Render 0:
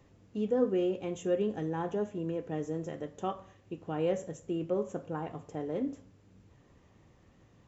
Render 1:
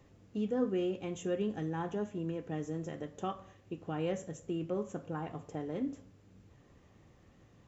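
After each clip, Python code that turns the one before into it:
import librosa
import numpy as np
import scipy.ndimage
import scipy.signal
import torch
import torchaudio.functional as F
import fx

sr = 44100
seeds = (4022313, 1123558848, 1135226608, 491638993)

y = fx.notch(x, sr, hz=950.0, q=22.0)
y = fx.dynamic_eq(y, sr, hz=510.0, q=1.2, threshold_db=-41.0, ratio=4.0, max_db=-6)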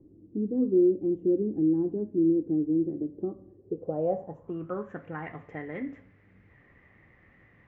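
y = fx.filter_sweep_lowpass(x, sr, from_hz=330.0, to_hz=2000.0, start_s=3.48, end_s=5.05, q=7.7)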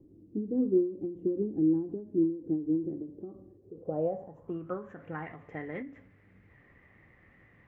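y = fx.end_taper(x, sr, db_per_s=120.0)
y = y * 10.0 ** (-1.0 / 20.0)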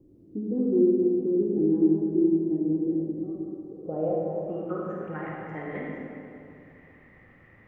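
y = fx.rev_freeverb(x, sr, rt60_s=2.7, hf_ratio=0.55, predelay_ms=10, drr_db=-3.5)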